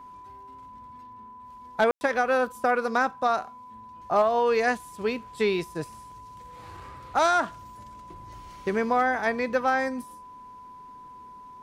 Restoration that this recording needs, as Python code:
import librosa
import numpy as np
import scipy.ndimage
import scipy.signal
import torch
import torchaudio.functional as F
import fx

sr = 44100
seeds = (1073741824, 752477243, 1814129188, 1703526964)

y = fx.fix_declip(x, sr, threshold_db=-13.5)
y = fx.notch(y, sr, hz=1000.0, q=30.0)
y = fx.fix_ambience(y, sr, seeds[0], print_start_s=11.09, print_end_s=11.59, start_s=1.91, end_s=2.01)